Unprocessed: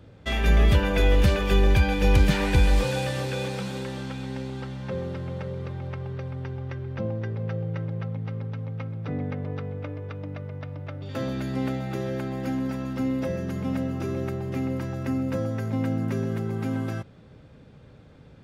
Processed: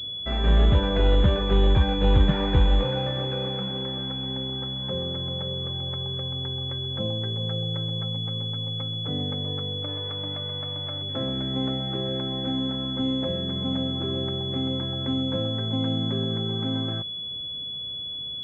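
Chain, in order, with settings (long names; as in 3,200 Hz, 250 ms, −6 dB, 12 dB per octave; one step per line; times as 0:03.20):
0:09.87–0:11.01: spectral envelope flattened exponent 0.6
switching amplifier with a slow clock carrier 3,400 Hz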